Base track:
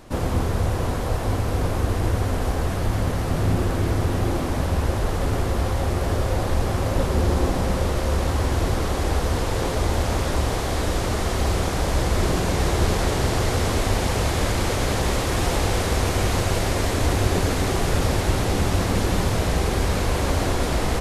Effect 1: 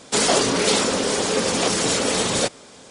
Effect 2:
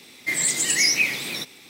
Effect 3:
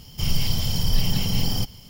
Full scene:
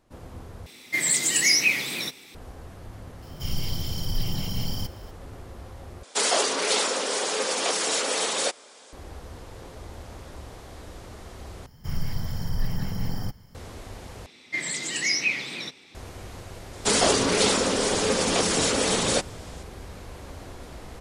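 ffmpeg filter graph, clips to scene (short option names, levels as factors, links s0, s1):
-filter_complex "[2:a]asplit=2[s0][s1];[3:a]asplit=2[s2][s3];[1:a]asplit=2[s4][s5];[0:a]volume=0.112[s6];[s2]bandreject=f=2600:w=16[s7];[s4]highpass=470[s8];[s3]highshelf=f=2200:t=q:w=3:g=-7.5[s9];[s1]lowpass=5700[s10];[s6]asplit=5[s11][s12][s13][s14][s15];[s11]atrim=end=0.664[s16];[s0]atrim=end=1.69,asetpts=PTS-STARTPTS,volume=0.944[s17];[s12]atrim=start=2.346:end=6.034[s18];[s8]atrim=end=2.9,asetpts=PTS-STARTPTS,volume=0.668[s19];[s13]atrim=start=8.926:end=11.664[s20];[s9]atrim=end=1.89,asetpts=PTS-STARTPTS,volume=0.531[s21];[s14]atrim=start=13.546:end=14.264[s22];[s10]atrim=end=1.69,asetpts=PTS-STARTPTS,volume=0.668[s23];[s15]atrim=start=15.946[s24];[s7]atrim=end=1.89,asetpts=PTS-STARTPTS,volume=0.473,afade=t=in:d=0.004:c=hsin,afade=t=out:st=1.886:d=0.004:c=hsin,adelay=3220[s25];[s5]atrim=end=2.9,asetpts=PTS-STARTPTS,volume=0.75,afade=t=in:d=0.004:c=hsin,afade=t=out:st=2.896:d=0.004:c=hsin,adelay=16730[s26];[s16][s17]acrossfade=d=0.004:c1=hsin:c2=hsin[s27];[s27][s18]acrossfade=d=0.004:c1=hsin:c2=hsin[s28];[s28][s19]acrossfade=d=0.004:c1=hsin:c2=hsin[s29];[s29][s20]acrossfade=d=0.004:c1=hsin:c2=hsin[s30];[s30][s21]acrossfade=d=0.004:c1=hsin:c2=hsin[s31];[s31][s22]acrossfade=d=0.004:c1=hsin:c2=hsin[s32];[s32][s23]acrossfade=d=0.004:c1=hsin:c2=hsin[s33];[s33][s24]acrossfade=d=0.004:c1=hsin:c2=hsin[s34];[s34][s25][s26]amix=inputs=3:normalize=0"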